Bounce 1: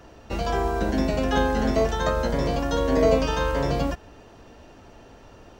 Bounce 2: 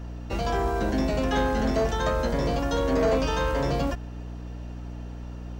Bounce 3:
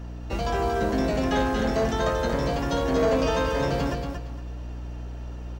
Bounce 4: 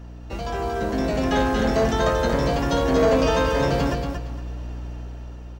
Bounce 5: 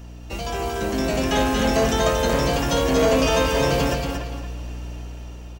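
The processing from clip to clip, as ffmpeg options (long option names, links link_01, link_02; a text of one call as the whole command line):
ffmpeg -i in.wav -af "aeval=exprs='val(0)+0.0178*(sin(2*PI*60*n/s)+sin(2*PI*2*60*n/s)/2+sin(2*PI*3*60*n/s)/3+sin(2*PI*4*60*n/s)/4+sin(2*PI*5*60*n/s)/5)':channel_layout=same,asoftclip=type=tanh:threshold=-17dB" out.wav
ffmpeg -i in.wav -af "aecho=1:1:231|462|693:0.501|0.12|0.0289" out.wav
ffmpeg -i in.wav -af "dynaudnorm=framelen=440:gausssize=5:maxgain=6.5dB,volume=-2.5dB" out.wav
ffmpeg -i in.wav -filter_complex "[0:a]asplit=2[link_01][link_02];[link_02]adelay=290,highpass=300,lowpass=3400,asoftclip=type=hard:threshold=-19.5dB,volume=-7dB[link_03];[link_01][link_03]amix=inputs=2:normalize=0,aexciter=amount=1.1:drive=9.3:freq=2300" out.wav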